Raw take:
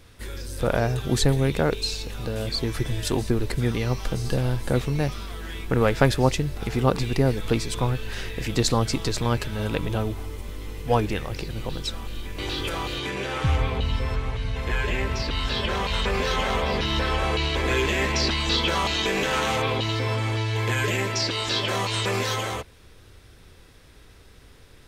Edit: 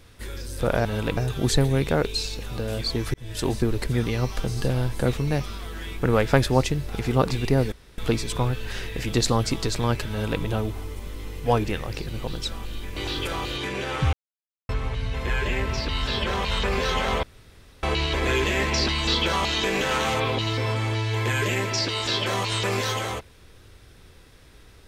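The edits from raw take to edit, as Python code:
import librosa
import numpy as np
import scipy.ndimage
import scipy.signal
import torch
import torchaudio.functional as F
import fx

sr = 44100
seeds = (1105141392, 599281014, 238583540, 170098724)

y = fx.edit(x, sr, fx.fade_in_span(start_s=2.82, length_s=0.34),
    fx.insert_room_tone(at_s=7.4, length_s=0.26),
    fx.duplicate(start_s=9.52, length_s=0.32, to_s=0.85),
    fx.silence(start_s=13.55, length_s=0.56),
    fx.room_tone_fill(start_s=16.65, length_s=0.6), tone=tone)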